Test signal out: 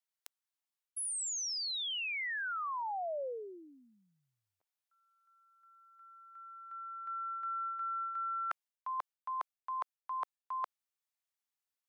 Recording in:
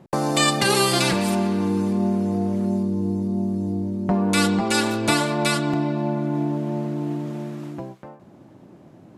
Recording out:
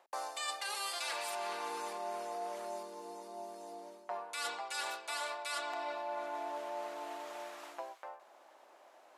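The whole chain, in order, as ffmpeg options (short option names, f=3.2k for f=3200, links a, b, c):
-af "highpass=f=650:w=0.5412,highpass=f=650:w=1.3066,areverse,acompressor=threshold=-34dB:ratio=20,areverse,volume=-1.5dB"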